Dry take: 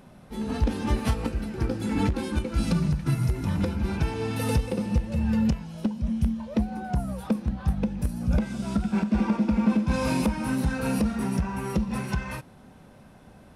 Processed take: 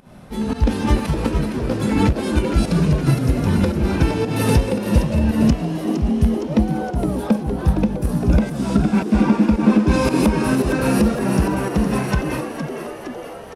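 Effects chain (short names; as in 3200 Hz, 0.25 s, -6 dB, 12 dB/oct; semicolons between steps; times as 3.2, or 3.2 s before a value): pump 113 bpm, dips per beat 1, -15 dB, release 0.183 s; frequency-shifting echo 0.463 s, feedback 61%, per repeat +94 Hz, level -8.5 dB; gain +8 dB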